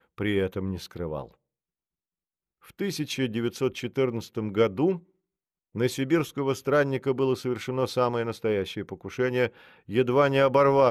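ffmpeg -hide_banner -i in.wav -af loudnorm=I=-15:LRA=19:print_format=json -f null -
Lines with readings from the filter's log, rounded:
"input_i" : "-25.9",
"input_tp" : "-9.5",
"input_lra" : "8.2",
"input_thresh" : "-36.3",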